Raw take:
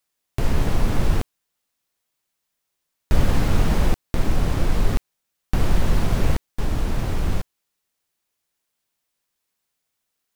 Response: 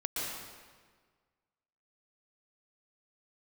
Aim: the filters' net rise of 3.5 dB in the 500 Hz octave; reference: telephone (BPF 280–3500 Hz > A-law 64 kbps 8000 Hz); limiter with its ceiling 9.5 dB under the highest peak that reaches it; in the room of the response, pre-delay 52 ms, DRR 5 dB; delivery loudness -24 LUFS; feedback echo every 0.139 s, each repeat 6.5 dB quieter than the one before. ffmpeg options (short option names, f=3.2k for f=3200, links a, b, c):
-filter_complex "[0:a]equalizer=f=500:t=o:g=5,alimiter=limit=-13.5dB:level=0:latency=1,aecho=1:1:139|278|417|556|695|834:0.473|0.222|0.105|0.0491|0.0231|0.0109,asplit=2[a][b];[1:a]atrim=start_sample=2205,adelay=52[c];[b][c]afir=irnorm=-1:irlink=0,volume=-10dB[d];[a][d]amix=inputs=2:normalize=0,highpass=280,lowpass=3.5k,volume=7dB" -ar 8000 -c:a pcm_alaw